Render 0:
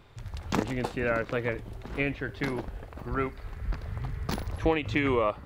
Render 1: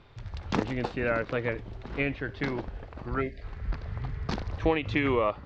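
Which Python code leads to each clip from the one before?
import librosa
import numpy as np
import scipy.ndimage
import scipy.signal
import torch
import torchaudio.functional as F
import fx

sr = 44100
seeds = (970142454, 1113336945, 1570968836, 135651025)

y = scipy.signal.sosfilt(scipy.signal.butter(4, 5600.0, 'lowpass', fs=sr, output='sos'), x)
y = fx.spec_box(y, sr, start_s=3.21, length_s=0.21, low_hz=730.0, high_hz=1600.0, gain_db=-27)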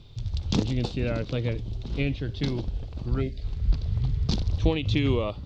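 y = fx.curve_eq(x, sr, hz=(120.0, 1800.0, 3500.0), db=(0, -21, 0))
y = y * librosa.db_to_amplitude(9.0)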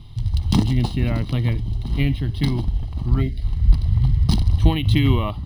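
y = x + 0.73 * np.pad(x, (int(1.0 * sr / 1000.0), 0))[:len(x)]
y = np.interp(np.arange(len(y)), np.arange(len(y))[::3], y[::3])
y = y * librosa.db_to_amplitude(4.5)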